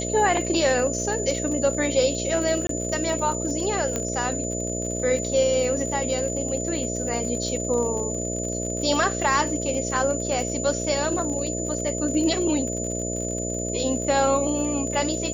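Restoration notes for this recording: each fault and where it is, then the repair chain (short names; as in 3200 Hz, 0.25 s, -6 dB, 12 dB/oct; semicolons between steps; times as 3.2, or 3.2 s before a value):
buzz 60 Hz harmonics 11 -30 dBFS
crackle 54/s -31 dBFS
tone 7000 Hz -30 dBFS
2.67–2.69 gap 23 ms
3.96 pop -11 dBFS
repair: de-click; notch 7000 Hz, Q 30; de-hum 60 Hz, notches 11; interpolate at 2.67, 23 ms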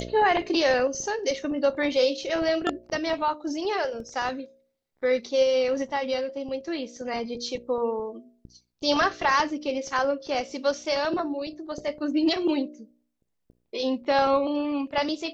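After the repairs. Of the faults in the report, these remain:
none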